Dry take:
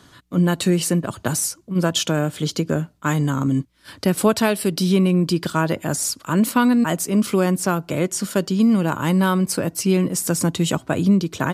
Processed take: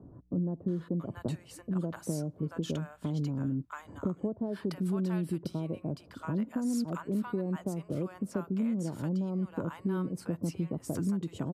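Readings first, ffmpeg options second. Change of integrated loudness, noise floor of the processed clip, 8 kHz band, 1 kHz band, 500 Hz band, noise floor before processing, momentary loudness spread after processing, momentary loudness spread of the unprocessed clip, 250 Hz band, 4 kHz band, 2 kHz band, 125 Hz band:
-14.0 dB, -56 dBFS, -24.0 dB, -19.5 dB, -15.0 dB, -53 dBFS, 5 LU, 6 LU, -13.0 dB, -23.5 dB, -22.0 dB, -12.0 dB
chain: -filter_complex "[0:a]tiltshelf=f=1.5k:g=9,acompressor=threshold=-25dB:ratio=4,acrossover=split=790[a][b];[b]adelay=680[c];[a][c]amix=inputs=2:normalize=0,volume=-7dB"

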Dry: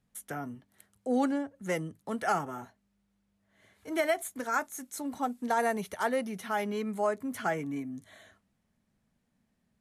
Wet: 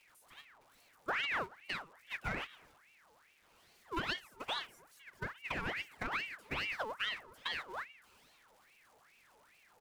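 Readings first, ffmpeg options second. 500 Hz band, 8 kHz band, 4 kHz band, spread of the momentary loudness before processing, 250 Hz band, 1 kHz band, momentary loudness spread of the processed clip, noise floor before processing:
-15.5 dB, -16.5 dB, +6.0 dB, 12 LU, -17.5 dB, -10.0 dB, 14 LU, -77 dBFS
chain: -filter_complex "[0:a]aeval=exprs='val(0)+0.5*0.0188*sgn(val(0))':c=same,flanger=delay=4.1:depth=6.8:regen=-53:speed=0.22:shape=triangular,asplit=2[a][b];[b]acrusher=bits=3:mix=0:aa=0.000001,volume=-11dB[c];[a][c]amix=inputs=2:normalize=0,agate=range=-21dB:threshold=-34dB:ratio=16:detection=peak,asplit=2[d][e];[e]adelay=114,lowpass=f=950:p=1,volume=-24dB,asplit=2[f][g];[g]adelay=114,lowpass=f=950:p=1,volume=0.53,asplit=2[h][i];[i]adelay=114,lowpass=f=950:p=1,volume=0.53[j];[f][h][j]amix=inputs=3:normalize=0[k];[d][k]amix=inputs=2:normalize=0,acrossover=split=5000[l][m];[m]acompressor=threshold=-59dB:ratio=4:attack=1:release=60[n];[l][n]amix=inputs=2:normalize=0,alimiter=level_in=2.5dB:limit=-24dB:level=0:latency=1:release=169,volume=-2.5dB,aeval=exprs='val(0)*sin(2*PI*1600*n/s+1600*0.6/2.4*sin(2*PI*2.4*n/s))':c=same,volume=2dB"

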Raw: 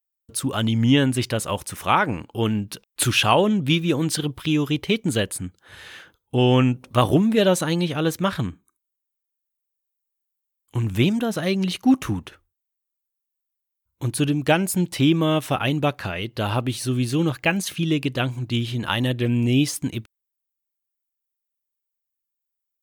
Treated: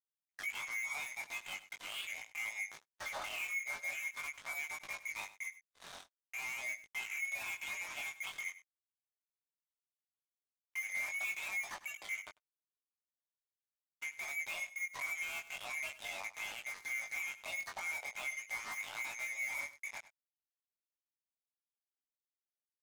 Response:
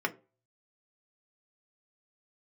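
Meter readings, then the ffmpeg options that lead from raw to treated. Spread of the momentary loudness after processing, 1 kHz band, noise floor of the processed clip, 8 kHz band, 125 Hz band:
8 LU, -22.5 dB, under -85 dBFS, -15.0 dB, under -40 dB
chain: -af "afftfilt=real='real(if(lt(b,920),b+92*(1-2*mod(floor(b/92),2)),b),0)':imag='imag(if(lt(b,920),b+92*(1-2*mod(floor(b/92),2)),b),0)':win_size=2048:overlap=0.75,deesser=0.5,afftfilt=real='re*between(b*sr/4096,540,6700)':imag='im*between(b*sr/4096,540,6700)':win_size=4096:overlap=0.75,highshelf=f=3.7k:g=-11.5,acompressor=threshold=-39dB:ratio=2,alimiter=level_in=6.5dB:limit=-24dB:level=0:latency=1:release=103,volume=-6.5dB,flanger=delay=9.4:depth=1.3:regen=-1:speed=0.88:shape=triangular,asoftclip=type=hard:threshold=-37.5dB,acrusher=bits=6:mix=0:aa=0.5,flanger=delay=18.5:depth=4:speed=0.42,aecho=1:1:99:0.158,agate=range=-40dB:threshold=-59dB:ratio=16:detection=peak,volume=3.5dB"

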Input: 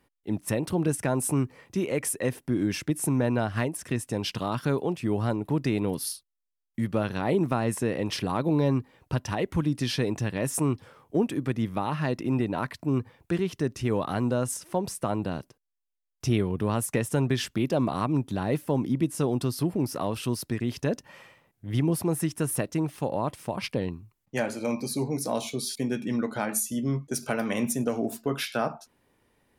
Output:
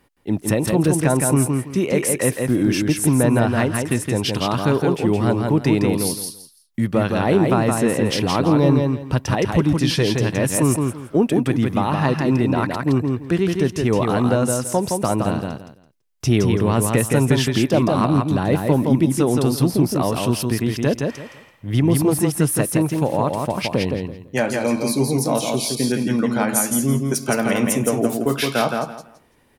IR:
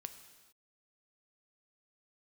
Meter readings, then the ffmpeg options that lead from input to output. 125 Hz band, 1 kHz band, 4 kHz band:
+9.0 dB, +9.0 dB, +9.5 dB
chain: -af "aecho=1:1:167|334|501:0.631|0.139|0.0305,acontrast=61,volume=1.5dB"

